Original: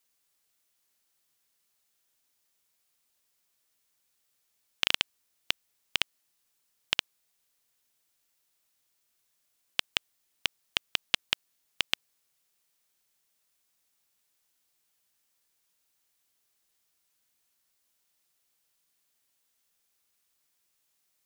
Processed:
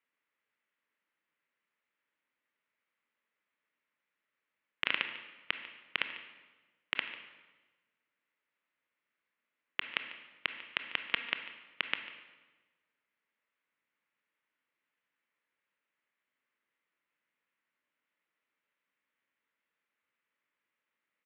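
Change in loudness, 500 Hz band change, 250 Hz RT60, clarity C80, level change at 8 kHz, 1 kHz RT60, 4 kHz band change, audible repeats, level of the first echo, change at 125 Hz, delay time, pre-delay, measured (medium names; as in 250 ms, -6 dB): -5.5 dB, -3.0 dB, 1.3 s, 9.5 dB, under -30 dB, 1.2 s, -9.0 dB, 1, -16.5 dB, no reading, 146 ms, 21 ms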